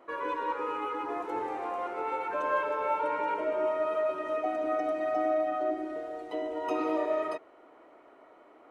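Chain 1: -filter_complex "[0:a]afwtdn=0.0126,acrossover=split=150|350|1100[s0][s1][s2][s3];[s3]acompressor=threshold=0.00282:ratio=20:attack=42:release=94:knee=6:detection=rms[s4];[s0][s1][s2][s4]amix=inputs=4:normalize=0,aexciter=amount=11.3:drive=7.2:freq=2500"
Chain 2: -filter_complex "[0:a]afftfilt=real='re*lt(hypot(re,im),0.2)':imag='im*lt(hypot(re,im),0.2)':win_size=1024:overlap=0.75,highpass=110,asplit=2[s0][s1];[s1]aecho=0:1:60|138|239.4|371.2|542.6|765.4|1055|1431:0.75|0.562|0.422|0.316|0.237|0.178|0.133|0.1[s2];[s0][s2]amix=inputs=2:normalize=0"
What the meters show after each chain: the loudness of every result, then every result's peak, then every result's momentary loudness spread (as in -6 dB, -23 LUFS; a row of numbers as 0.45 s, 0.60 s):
-32.5 LUFS, -32.0 LUFS; -19.0 dBFS, -18.5 dBFS; 6 LU, 10 LU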